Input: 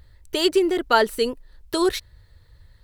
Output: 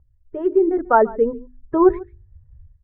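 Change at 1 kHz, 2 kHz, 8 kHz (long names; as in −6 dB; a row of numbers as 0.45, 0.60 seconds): +4.0 dB, −5.5 dB, below −40 dB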